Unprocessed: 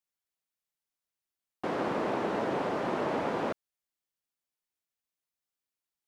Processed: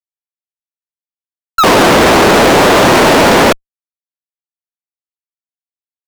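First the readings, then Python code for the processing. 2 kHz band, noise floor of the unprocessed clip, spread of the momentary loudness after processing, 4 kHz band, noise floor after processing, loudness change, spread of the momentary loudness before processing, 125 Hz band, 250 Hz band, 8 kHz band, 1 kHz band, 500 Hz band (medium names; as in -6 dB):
+28.0 dB, under -85 dBFS, 5 LU, +33.5 dB, under -85 dBFS, +24.5 dB, 5 LU, +25.0 dB, +23.0 dB, no reading, +24.5 dB, +23.0 dB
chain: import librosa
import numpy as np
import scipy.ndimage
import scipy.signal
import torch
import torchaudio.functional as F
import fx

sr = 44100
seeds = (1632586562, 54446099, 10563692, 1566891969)

y = fx.spec_paint(x, sr, seeds[0], shape='fall', start_s=1.58, length_s=0.39, low_hz=530.0, high_hz=1400.0, level_db=-40.0)
y = fx.fuzz(y, sr, gain_db=51.0, gate_db=-54.0)
y = y * 10.0 ** (7.0 / 20.0)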